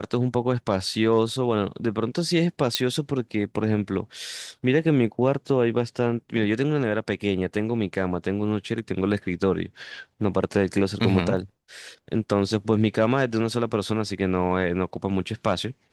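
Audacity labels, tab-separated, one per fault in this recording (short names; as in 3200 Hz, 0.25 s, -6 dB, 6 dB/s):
2.750000	2.750000	pop -6 dBFS
11.370000	11.370000	gap 2.1 ms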